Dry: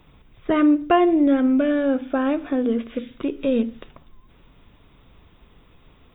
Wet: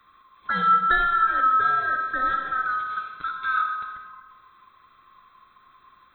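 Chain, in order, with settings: band-swap scrambler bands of 1000 Hz; digital reverb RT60 1.4 s, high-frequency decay 0.8×, pre-delay 15 ms, DRR 3.5 dB; gain -5.5 dB

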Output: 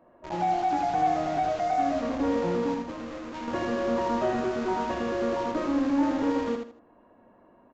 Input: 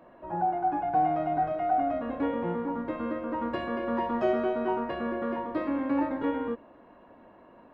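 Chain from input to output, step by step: flange 0.28 Hz, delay 8.3 ms, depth 3.2 ms, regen -76%; in parallel at -5.5 dB: companded quantiser 2-bit; on the sum: high shelf 2100 Hz -8 dB; 2.74–3.48 hard clip -35 dBFS, distortion -15 dB; on a send: feedback echo 79 ms, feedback 26%, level -5 dB; on the sum: downsampling 16000 Hz

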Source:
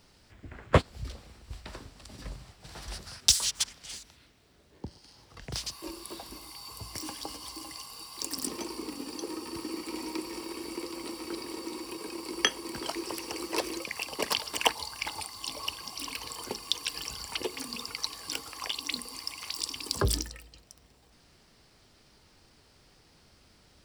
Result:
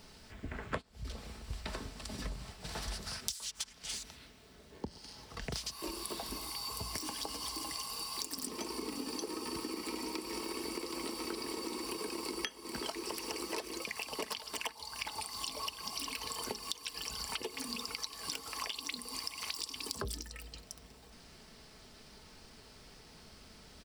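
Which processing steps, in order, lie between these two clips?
comb 4.6 ms, depth 35%; compressor 16:1, threshold -40 dBFS, peak gain reduction 25 dB; gain +4.5 dB

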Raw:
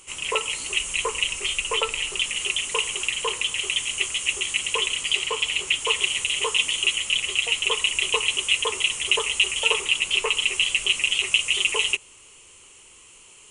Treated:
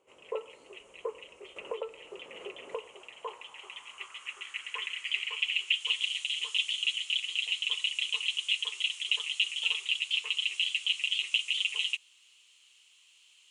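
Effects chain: bit-crush 9-bit; band-pass sweep 510 Hz -> 3600 Hz, 2.67–6.04; 1.56–2.88 three-band squash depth 70%; gain -4 dB

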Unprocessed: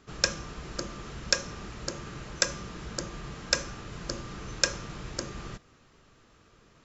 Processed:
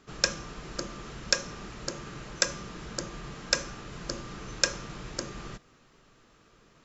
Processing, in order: bell 77 Hz -9.5 dB 0.65 oct

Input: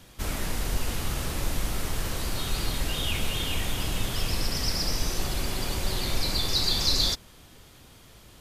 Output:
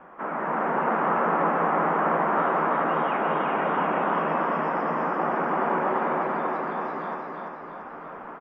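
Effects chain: steep high-pass 160 Hz 96 dB/oct; low shelf 370 Hz -4 dB; in parallel at +1.5 dB: compressor, threshold -39 dBFS, peak gain reduction 17 dB; on the sum: requantised 8-bit, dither triangular; tilt shelf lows -10 dB, about 720 Hz; AGC gain up to 7 dB; inverse Chebyshev low-pass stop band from 3900 Hz, stop band 60 dB; doubler 13 ms -12 dB; feedback echo 0.339 s, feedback 55%, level -3 dB; gain +5.5 dB

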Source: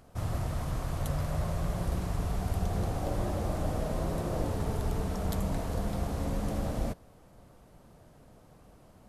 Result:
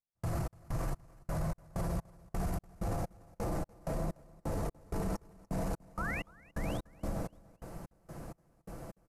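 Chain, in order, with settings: painted sound rise, 5.85–6.31, 770–4000 Hz -32 dBFS; tapped delay 89/501 ms -6.5/-12 dB; step gate "..xx..xx." 128 bpm -60 dB; comb 6 ms, depth 39%; limiter -36.5 dBFS, peak gain reduction 19.5 dB; bell 3400 Hz -9.5 dB 0.67 oct; feedback echo 0.292 s, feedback 39%, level -23 dB; gain +9.5 dB

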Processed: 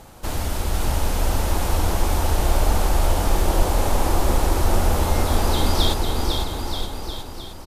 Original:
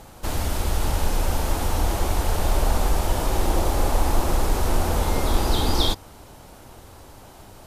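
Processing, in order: bouncing-ball echo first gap 0.5 s, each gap 0.85×, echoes 5

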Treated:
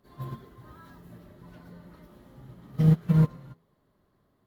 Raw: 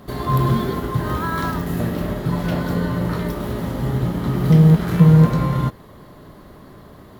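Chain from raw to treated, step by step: plain phase-vocoder stretch 0.62×; de-hum 82.38 Hz, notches 11; upward expander 2.5:1, over -22 dBFS; gain -5 dB

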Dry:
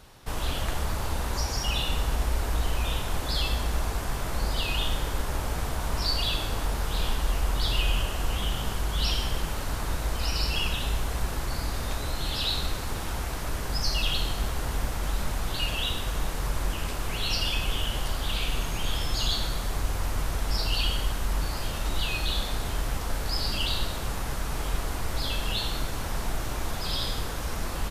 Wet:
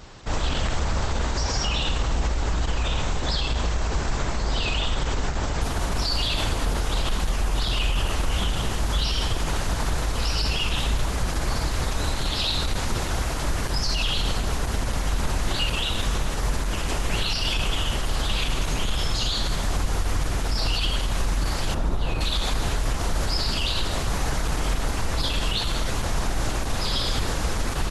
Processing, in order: 21.74–22.21 EQ curve 590 Hz 0 dB, 1300 Hz -5 dB, 3100 Hz -13 dB; limiter -23 dBFS, peak gain reduction 10 dB; gain +8.5 dB; Opus 12 kbps 48000 Hz

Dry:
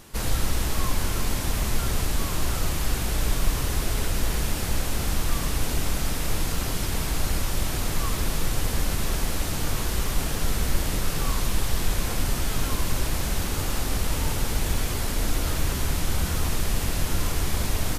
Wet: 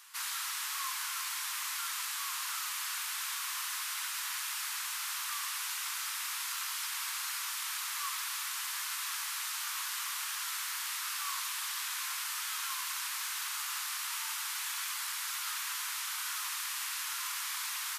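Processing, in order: steep high-pass 1000 Hz 48 dB/oct; gain -3.5 dB

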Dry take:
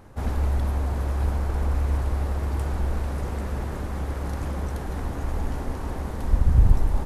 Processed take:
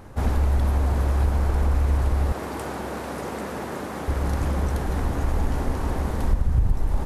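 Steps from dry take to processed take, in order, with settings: 2.32–4.08 HPF 220 Hz 12 dB/oct; compressor 6:1, threshold -21 dBFS, peak gain reduction 11 dB; gain +5 dB

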